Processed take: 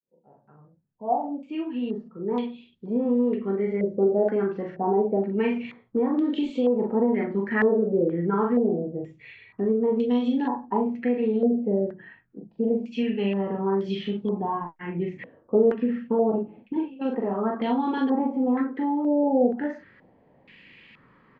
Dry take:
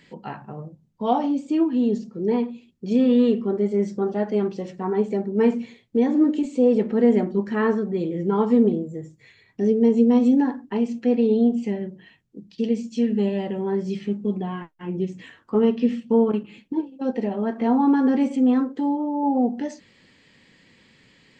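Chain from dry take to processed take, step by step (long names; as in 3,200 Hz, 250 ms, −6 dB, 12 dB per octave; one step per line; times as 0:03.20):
fade in at the beginning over 4.15 s
double-tracking delay 41 ms −3 dB
downward compressor 3 to 1, threshold −19 dBFS, peak gain reduction 7.5 dB
low-pass on a step sequencer 2.1 Hz 560–3,400 Hz
level −2.5 dB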